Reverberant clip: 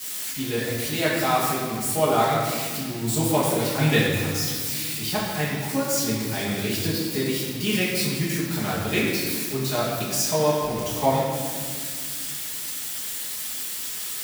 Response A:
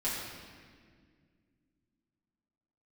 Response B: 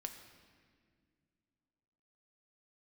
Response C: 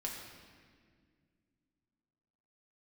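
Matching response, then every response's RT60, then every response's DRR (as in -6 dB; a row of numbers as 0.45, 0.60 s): A; 1.9, 2.0, 1.9 s; -10.5, 5.0, -2.5 dB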